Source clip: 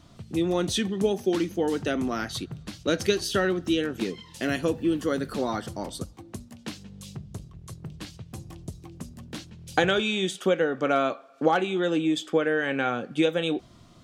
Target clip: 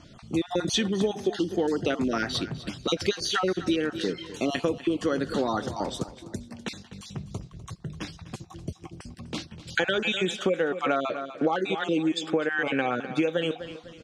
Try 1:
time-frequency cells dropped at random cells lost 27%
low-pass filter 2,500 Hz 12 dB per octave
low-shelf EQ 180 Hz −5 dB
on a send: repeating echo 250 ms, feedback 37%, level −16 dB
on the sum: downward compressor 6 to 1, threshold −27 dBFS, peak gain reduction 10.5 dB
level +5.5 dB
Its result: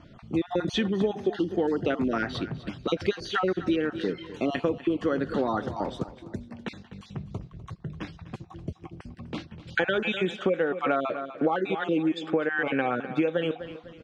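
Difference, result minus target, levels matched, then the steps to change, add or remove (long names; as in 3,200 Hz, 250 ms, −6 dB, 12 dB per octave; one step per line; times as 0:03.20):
8,000 Hz band −14.0 dB
change: low-pass filter 6,600 Hz 12 dB per octave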